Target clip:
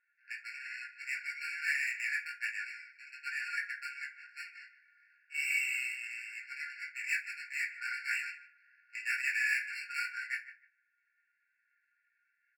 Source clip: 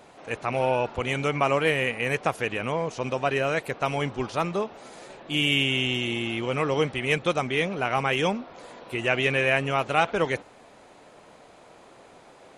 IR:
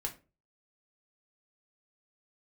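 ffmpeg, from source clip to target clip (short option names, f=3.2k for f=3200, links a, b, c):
-filter_complex "[0:a]aemphasis=mode=reproduction:type=75fm,bandreject=f=3.2k:w=15,asubboost=boost=9.5:cutoff=80,adynamicsmooth=sensitivity=4:basefreq=630,flanger=delay=15.5:depth=5.1:speed=2.5,asoftclip=type=tanh:threshold=-22dB,asplit=2[a][b];[b]adelay=151,lowpass=f=1.3k:p=1,volume=-9.5dB,asplit=2[c][d];[d]adelay=151,lowpass=f=1.3k:p=1,volume=0.32,asplit=2[e][f];[f]adelay=151,lowpass=f=1.3k:p=1,volume=0.32,asplit=2[g][h];[h]adelay=151,lowpass=f=1.3k:p=1,volume=0.32[i];[a][c][e][g][i]amix=inputs=5:normalize=0[j];[1:a]atrim=start_sample=2205[k];[j][k]afir=irnorm=-1:irlink=0,afftfilt=real='re*eq(mod(floor(b*sr/1024/1400),2),1)':imag='im*eq(mod(floor(b*sr/1024/1400),2),1)':win_size=1024:overlap=0.75,volume=2dB"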